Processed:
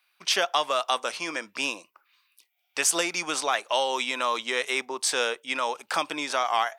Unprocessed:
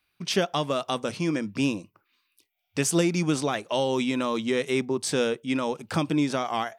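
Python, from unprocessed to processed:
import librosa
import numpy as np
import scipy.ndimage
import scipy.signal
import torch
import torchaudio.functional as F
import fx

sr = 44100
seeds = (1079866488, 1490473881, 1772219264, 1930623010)

y = scipy.signal.sosfilt(scipy.signal.cheby1(2, 1.0, 880.0, 'highpass', fs=sr, output='sos'), x)
y = F.gain(torch.from_numpy(y), 5.5).numpy()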